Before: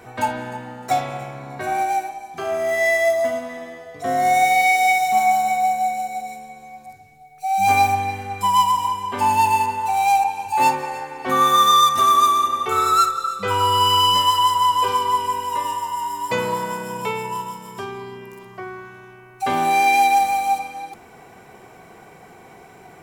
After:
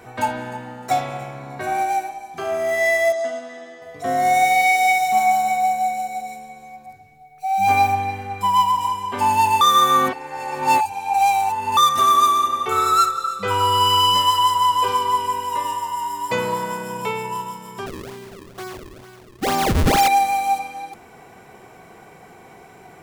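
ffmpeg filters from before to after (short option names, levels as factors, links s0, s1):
-filter_complex "[0:a]asettb=1/sr,asplit=3[s0][s1][s2];[s0]atrim=end=3.124[s3];[s1]atrim=start=3.12:end=3.82,asetpts=PTS-STARTPTS,afade=t=in:d=0.004:c=qsin,afade=t=out:st=0.696:d=0.004:c=qsin,highpass=330,equalizer=f=570:t=q:w=4:g=-6,equalizer=f=1000:t=q:w=4:g=-10,equalizer=f=2300:t=q:w=4:g=-8,lowpass=f=8000:w=0.5412,lowpass=f=8000:w=1.3066[s4];[s2]atrim=start=3.816[s5];[s3][s4]acrossfade=d=0.004:c1=hsin:c2=qsin[s6];[s6][s5]acrossfade=d=0.004:c1=qsin:c2=hsin,asettb=1/sr,asplit=3[s7][s8][s9];[s7]atrim=end=6.764[s10];[s8]atrim=start=6.76:end=8.81,asetpts=PTS-STARTPTS,afade=t=in:d=0.004:c=qsin,afade=t=out:st=2.046:d=0.004:c=qsin,equalizer=f=8700:t=o:w=1.9:g=-6[s11];[s9]atrim=start=8.806[s12];[s10][s11]acrossfade=d=0.004:c1=hsin:c2=qsin[s13];[s13][s12]acrossfade=d=0.004:c1=qsin:c2=hsin,asettb=1/sr,asplit=3[s14][s15][s16];[s14]atrim=end=17.864[s17];[s15]atrim=start=17.86:end=20.08,asetpts=PTS-STARTPTS,afade=t=in:d=0.004:c=qsin,afade=t=out:st=2.216:d=0.004:c=qsin,acrusher=samples=35:mix=1:aa=0.000001:lfo=1:lforange=56:lforate=2.2[s18];[s16]atrim=start=20.076[s19];[s17][s18]acrossfade=d=0.004:c1=hsin:c2=qsin[s20];[s20][s19]acrossfade=d=0.004:c1=qsin:c2=hsin,asplit=3[s21][s22][s23];[s21]atrim=end=9.612[s24];[s22]atrim=start=9.608:end=11.772,asetpts=PTS-STARTPTS,areverse[s25];[s23]atrim=start=11.768[s26];[s24][s25]acrossfade=d=0.004:c1=hsin:c2=hsin[s27];[s27][s26]acrossfade=d=0.004:c1=hsin:c2=hsin"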